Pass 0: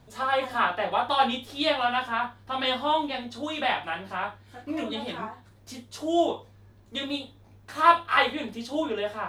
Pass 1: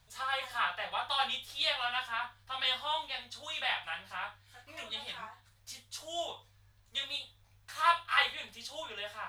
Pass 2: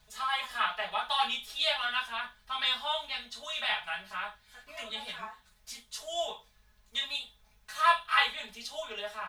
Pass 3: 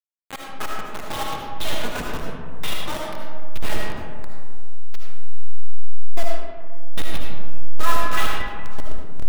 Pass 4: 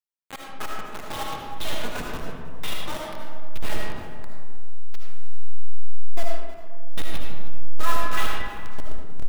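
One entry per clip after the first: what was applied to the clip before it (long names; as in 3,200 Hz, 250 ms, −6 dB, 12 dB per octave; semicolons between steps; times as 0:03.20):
guitar amp tone stack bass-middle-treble 10-0-10
comb filter 4.7 ms, depth 92%
hold until the input has moved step −22 dBFS; comb and all-pass reverb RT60 1.8 s, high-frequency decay 0.45×, pre-delay 35 ms, DRR −2 dB; level −1 dB
single-tap delay 315 ms −18.5 dB; level −3.5 dB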